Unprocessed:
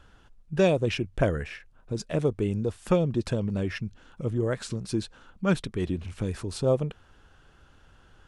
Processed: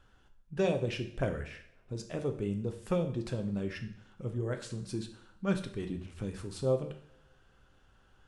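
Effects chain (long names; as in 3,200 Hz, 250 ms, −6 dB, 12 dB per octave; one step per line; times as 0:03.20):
coupled-rooms reverb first 0.59 s, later 2.4 s, from −28 dB, DRR 5.5 dB
level −8.5 dB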